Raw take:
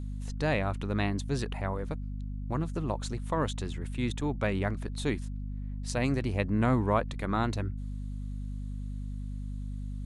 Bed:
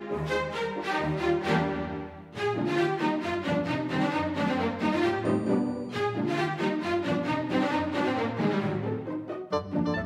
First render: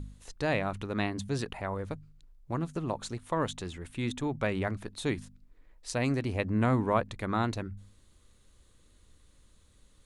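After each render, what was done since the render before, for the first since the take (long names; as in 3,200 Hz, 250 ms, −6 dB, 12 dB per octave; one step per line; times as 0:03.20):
hum removal 50 Hz, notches 5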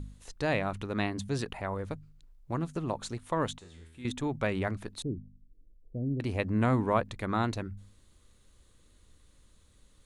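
0:03.58–0:04.05: tuned comb filter 81 Hz, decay 0.82 s, mix 90%
0:05.02–0:06.20: Gaussian smoothing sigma 22 samples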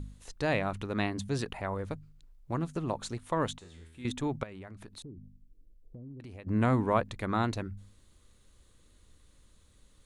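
0:04.43–0:06.47: downward compressor, threshold −43 dBFS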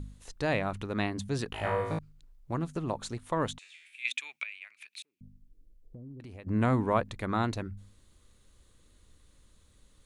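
0:01.51–0:01.99: flutter between parallel walls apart 3.2 metres, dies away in 0.82 s
0:03.59–0:05.21: high-pass with resonance 2,400 Hz, resonance Q 8.5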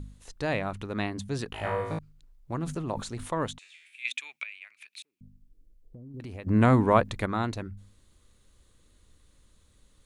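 0:02.63–0:03.44: level that may fall only so fast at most 71 dB per second
0:06.14–0:07.26: clip gain +6 dB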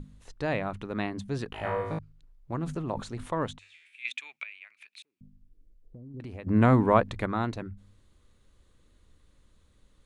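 high-shelf EQ 4,700 Hz −10 dB
mains-hum notches 50/100 Hz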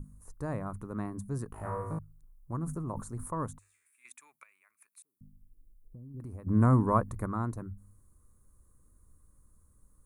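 drawn EQ curve 120 Hz 0 dB, 770 Hz −10 dB, 1,100 Hz −1 dB, 3,200 Hz −30 dB, 10,000 Hz +11 dB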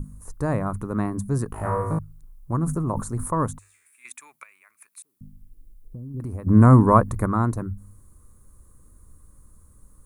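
level +11 dB
brickwall limiter −3 dBFS, peak gain reduction 1.5 dB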